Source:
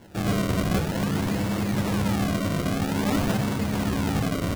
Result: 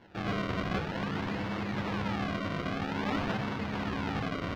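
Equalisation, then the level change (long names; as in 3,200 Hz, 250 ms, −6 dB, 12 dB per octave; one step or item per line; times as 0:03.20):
high-frequency loss of the air 250 metres
low-shelf EQ 460 Hz −11 dB
parametric band 600 Hz −3 dB 0.39 octaves
0.0 dB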